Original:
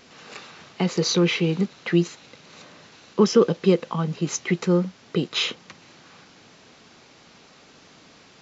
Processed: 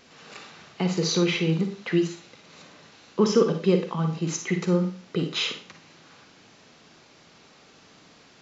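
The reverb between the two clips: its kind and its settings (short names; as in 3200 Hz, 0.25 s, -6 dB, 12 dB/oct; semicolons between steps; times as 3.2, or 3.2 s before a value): Schroeder reverb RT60 0.38 s, DRR 5.5 dB; gain -3.5 dB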